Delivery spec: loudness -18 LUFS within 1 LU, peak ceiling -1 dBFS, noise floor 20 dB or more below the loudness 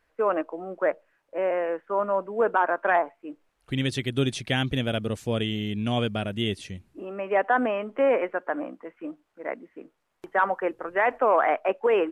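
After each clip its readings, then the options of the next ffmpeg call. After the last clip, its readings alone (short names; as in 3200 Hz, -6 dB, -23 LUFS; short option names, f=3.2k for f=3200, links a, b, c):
loudness -26.0 LUFS; peak -9.5 dBFS; loudness target -18.0 LUFS
-> -af "volume=8dB"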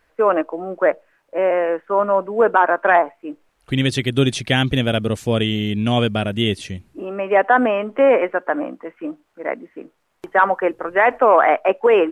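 loudness -18.0 LUFS; peak -1.5 dBFS; noise floor -64 dBFS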